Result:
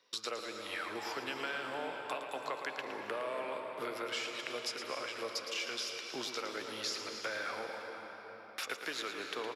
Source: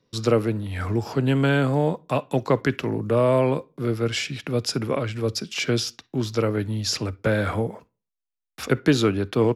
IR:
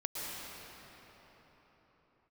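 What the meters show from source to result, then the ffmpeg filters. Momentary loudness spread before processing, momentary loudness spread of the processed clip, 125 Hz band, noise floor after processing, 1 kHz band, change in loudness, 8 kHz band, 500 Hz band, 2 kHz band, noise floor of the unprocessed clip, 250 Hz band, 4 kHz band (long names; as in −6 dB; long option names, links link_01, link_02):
7 LU, 4 LU, −38.0 dB, −51 dBFS, −10.0 dB, −15.0 dB, −10.5 dB, −17.5 dB, −8.5 dB, −85 dBFS, −24.0 dB, −8.0 dB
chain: -filter_complex "[0:a]highpass=690,equalizer=frequency=2600:width=0.48:gain=4.5,acompressor=threshold=-40dB:ratio=5,aecho=1:1:195:0.1,asplit=2[link_01][link_02];[1:a]atrim=start_sample=2205,adelay=113[link_03];[link_02][link_03]afir=irnorm=-1:irlink=0,volume=-6dB[link_04];[link_01][link_04]amix=inputs=2:normalize=0,volume=1dB"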